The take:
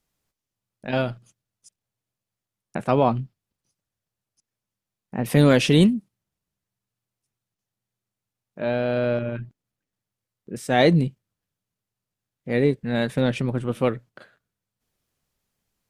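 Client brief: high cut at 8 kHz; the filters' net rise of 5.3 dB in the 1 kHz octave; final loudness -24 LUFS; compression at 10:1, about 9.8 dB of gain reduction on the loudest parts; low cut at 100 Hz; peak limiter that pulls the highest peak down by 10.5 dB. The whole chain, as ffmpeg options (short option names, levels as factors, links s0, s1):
-af "highpass=100,lowpass=8000,equalizer=f=1000:t=o:g=7.5,acompressor=threshold=0.1:ratio=10,volume=2.11,alimiter=limit=0.282:level=0:latency=1"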